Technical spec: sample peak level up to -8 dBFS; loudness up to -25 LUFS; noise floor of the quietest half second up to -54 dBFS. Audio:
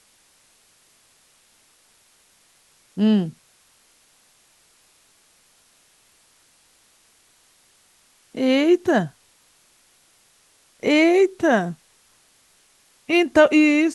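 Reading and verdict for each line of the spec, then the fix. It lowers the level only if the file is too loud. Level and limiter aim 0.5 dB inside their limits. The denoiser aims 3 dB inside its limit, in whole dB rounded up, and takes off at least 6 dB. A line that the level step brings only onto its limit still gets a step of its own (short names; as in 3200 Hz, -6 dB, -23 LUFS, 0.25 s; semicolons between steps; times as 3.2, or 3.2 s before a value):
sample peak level -4.0 dBFS: fail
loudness -19.0 LUFS: fail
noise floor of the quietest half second -59 dBFS: OK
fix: gain -6.5 dB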